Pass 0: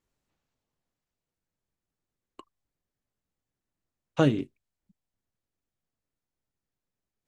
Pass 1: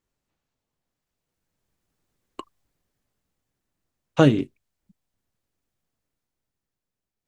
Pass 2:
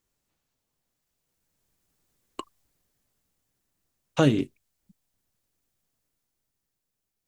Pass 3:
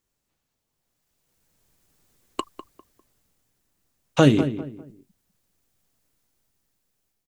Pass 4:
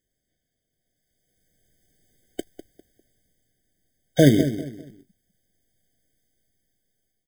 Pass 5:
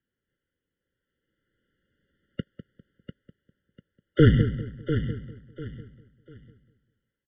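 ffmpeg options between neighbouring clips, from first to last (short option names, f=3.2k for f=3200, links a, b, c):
-af "dynaudnorm=f=260:g=11:m=12dB"
-af "highshelf=f=4.7k:g=8.5,alimiter=limit=-6.5dB:level=0:latency=1:release=230"
-filter_complex "[0:a]dynaudnorm=f=710:g=3:m=8dB,asplit=2[a][b];[b]adelay=200,lowpass=f=1.6k:p=1,volume=-11dB,asplit=2[c][d];[d]adelay=200,lowpass=f=1.6k:p=1,volume=0.31,asplit=2[e][f];[f]adelay=200,lowpass=f=1.6k:p=1,volume=0.31[g];[c][e][g]amix=inputs=3:normalize=0[h];[a][h]amix=inputs=2:normalize=0"
-af "acrusher=bits=3:mode=log:mix=0:aa=0.000001,afftfilt=real='re*eq(mod(floor(b*sr/1024/750),2),0)':imag='im*eq(mod(floor(b*sr/1024/750),2),0)':win_size=1024:overlap=0.75,volume=1dB"
-af "aecho=1:1:696|1392|2088:0.335|0.0904|0.0244,highpass=f=210:t=q:w=0.5412,highpass=f=210:t=q:w=1.307,lowpass=f=3.1k:t=q:w=0.5176,lowpass=f=3.1k:t=q:w=0.7071,lowpass=f=3.1k:t=q:w=1.932,afreqshift=-170"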